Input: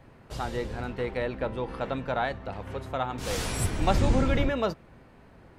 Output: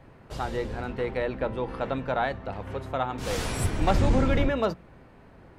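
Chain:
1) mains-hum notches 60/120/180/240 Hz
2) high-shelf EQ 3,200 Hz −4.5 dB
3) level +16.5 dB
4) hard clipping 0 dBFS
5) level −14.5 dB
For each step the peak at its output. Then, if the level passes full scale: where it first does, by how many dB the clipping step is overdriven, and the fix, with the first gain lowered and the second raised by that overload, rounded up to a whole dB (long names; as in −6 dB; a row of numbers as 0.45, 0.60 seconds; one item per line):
−10.5, −11.0, +5.5, 0.0, −14.5 dBFS
step 3, 5.5 dB
step 3 +10.5 dB, step 5 −8.5 dB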